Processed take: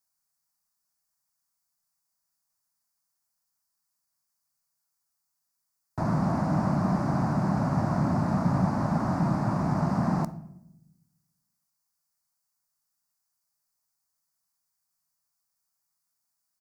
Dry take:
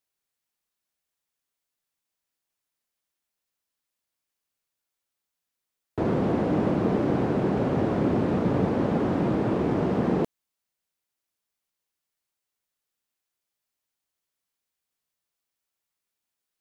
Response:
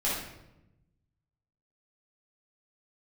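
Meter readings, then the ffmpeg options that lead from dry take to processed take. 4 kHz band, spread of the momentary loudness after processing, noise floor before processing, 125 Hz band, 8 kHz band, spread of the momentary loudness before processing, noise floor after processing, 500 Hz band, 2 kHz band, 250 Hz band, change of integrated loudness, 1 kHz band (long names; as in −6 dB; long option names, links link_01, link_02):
−3.5 dB, 4 LU, below −85 dBFS, +2.5 dB, can't be measured, 2 LU, −81 dBFS, −8.5 dB, −2.0 dB, −2.0 dB, −1.5 dB, +1.5 dB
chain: -filter_complex "[0:a]firequalizer=gain_entry='entry(100,0);entry(150,6);entry(450,-19);entry(630,1);entry(1100,5);entry(3200,-15);entry(4700,7)':delay=0.05:min_phase=1,asplit=2[link_01][link_02];[1:a]atrim=start_sample=2205,asetrate=48510,aresample=44100[link_03];[link_02][link_03]afir=irnorm=-1:irlink=0,volume=-20.5dB[link_04];[link_01][link_04]amix=inputs=2:normalize=0,volume=-2dB"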